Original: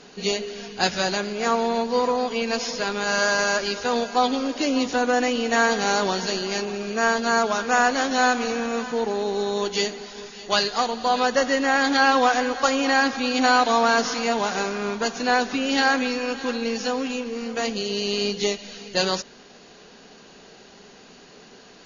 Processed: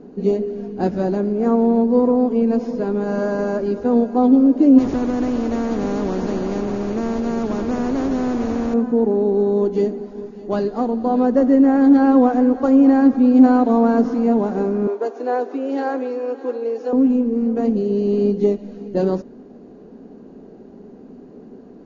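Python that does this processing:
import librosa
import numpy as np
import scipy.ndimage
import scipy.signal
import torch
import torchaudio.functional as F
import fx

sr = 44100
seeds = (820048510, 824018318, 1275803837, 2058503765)

y = fx.spectral_comp(x, sr, ratio=4.0, at=(4.78, 8.74))
y = fx.steep_highpass(y, sr, hz=350.0, slope=36, at=(14.87, 16.93))
y = fx.curve_eq(y, sr, hz=(160.0, 260.0, 3200.0), db=(0, 8, -30))
y = y * librosa.db_to_amplitude(7.0)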